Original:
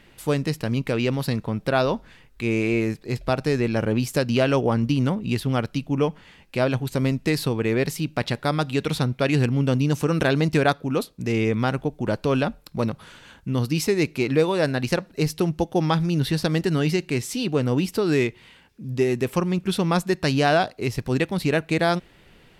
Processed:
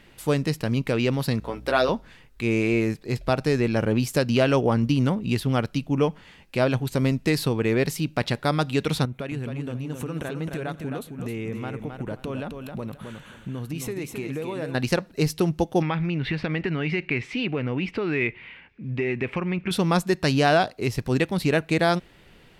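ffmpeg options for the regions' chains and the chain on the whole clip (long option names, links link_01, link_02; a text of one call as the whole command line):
ffmpeg -i in.wav -filter_complex "[0:a]asettb=1/sr,asplit=3[link_01][link_02][link_03];[link_01]atrim=end=1.404[link_04];[link_02]atrim=start=1.4:end=1.89,asetpts=PTS-STARTPTS,afade=type=in:duration=0.004:curve=qsin,afade=type=out:start_time=0.486:duration=0.004:curve=qsin,highpass=340,aeval=exprs='val(0)+0.00562*(sin(2*PI*60*n/s)+sin(2*PI*2*60*n/s)/2+sin(2*PI*3*60*n/s)/3+sin(2*PI*4*60*n/s)/4+sin(2*PI*5*60*n/s)/5)':channel_layout=same,asplit=2[link_05][link_06];[link_06]adelay=16,volume=-5dB[link_07];[link_05][link_07]amix=inputs=2:normalize=0,atrim=end_sample=21609[link_08];[link_03]atrim=start=1.886[link_09];[link_04][link_08]acrossfade=duration=0.004:curve1=hsin:curve2=qsin[link_10];[link_10][link_09]acrossfade=duration=0.004:curve1=qsin:curve2=hsin,asettb=1/sr,asplit=3[link_11][link_12][link_13];[link_11]atrim=end=9.054[link_14];[link_12]atrim=start=9.05:end=14.75,asetpts=PTS-STARTPTS,afade=type=in:duration=0.004:curve=qsin,afade=type=out:start_time=5.696:duration=0.004:curve=qsin,equalizer=frequency=4900:width=2.9:gain=-13,acompressor=threshold=-29dB:ratio=4:attack=3.2:release=140:knee=1:detection=peak,aecho=1:1:265|530|795:0.501|0.11|0.0243,atrim=end_sample=251370[link_15];[link_13]atrim=start=14.746[link_16];[link_14][link_15]acrossfade=duration=0.004:curve1=hsin:curve2=qsin[link_17];[link_17][link_16]acrossfade=duration=0.004:curve1=qsin:curve2=hsin,asettb=1/sr,asplit=3[link_18][link_19][link_20];[link_18]atrim=end=15.824[link_21];[link_19]atrim=start=15.82:end=19.71,asetpts=PTS-STARTPTS,afade=type=in:duration=0.004:curve=qsin,afade=type=out:start_time=3.886:duration=0.004:curve=qsin,acompressor=threshold=-22dB:ratio=5:attack=3.2:release=140:knee=1:detection=peak,lowpass=frequency=2300:width_type=q:width=3.8[link_22];[link_20]atrim=start=19.706[link_23];[link_21][link_22]acrossfade=duration=0.004:curve1=hsin:curve2=qsin[link_24];[link_24][link_23]acrossfade=duration=0.004:curve1=qsin:curve2=hsin" out.wav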